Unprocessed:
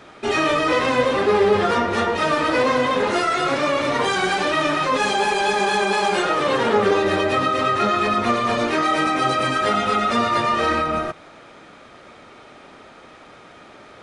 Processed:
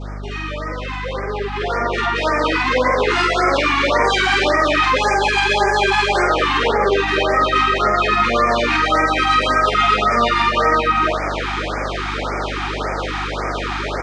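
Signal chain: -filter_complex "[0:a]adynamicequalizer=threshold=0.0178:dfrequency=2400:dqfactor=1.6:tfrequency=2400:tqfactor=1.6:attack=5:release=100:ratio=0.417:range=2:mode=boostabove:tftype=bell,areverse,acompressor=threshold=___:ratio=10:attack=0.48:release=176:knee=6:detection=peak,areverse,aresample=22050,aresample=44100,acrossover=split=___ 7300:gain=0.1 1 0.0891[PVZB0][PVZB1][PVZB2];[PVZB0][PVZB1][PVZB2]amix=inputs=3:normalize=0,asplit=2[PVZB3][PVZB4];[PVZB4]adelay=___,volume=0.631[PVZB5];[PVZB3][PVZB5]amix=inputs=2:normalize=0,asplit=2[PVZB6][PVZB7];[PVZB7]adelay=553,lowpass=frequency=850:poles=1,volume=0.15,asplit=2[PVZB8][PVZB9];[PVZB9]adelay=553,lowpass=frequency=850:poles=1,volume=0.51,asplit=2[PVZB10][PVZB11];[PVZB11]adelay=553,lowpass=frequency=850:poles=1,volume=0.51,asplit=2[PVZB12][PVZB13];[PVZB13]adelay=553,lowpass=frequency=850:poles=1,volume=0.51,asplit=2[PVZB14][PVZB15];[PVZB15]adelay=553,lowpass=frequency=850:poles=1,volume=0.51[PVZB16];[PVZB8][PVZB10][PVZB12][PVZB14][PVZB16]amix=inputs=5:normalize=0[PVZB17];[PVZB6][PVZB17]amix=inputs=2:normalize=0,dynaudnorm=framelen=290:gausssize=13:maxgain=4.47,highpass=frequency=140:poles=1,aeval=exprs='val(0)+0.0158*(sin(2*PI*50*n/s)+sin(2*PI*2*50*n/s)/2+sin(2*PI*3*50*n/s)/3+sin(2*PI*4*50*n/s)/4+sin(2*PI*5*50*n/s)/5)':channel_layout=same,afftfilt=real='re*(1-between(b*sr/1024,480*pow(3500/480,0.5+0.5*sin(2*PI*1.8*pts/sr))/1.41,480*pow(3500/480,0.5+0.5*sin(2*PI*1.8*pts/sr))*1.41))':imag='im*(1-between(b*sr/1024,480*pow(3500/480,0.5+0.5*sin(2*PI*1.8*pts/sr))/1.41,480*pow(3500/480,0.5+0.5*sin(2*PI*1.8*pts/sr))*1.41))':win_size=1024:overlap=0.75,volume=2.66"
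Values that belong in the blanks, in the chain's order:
0.0251, 260, 47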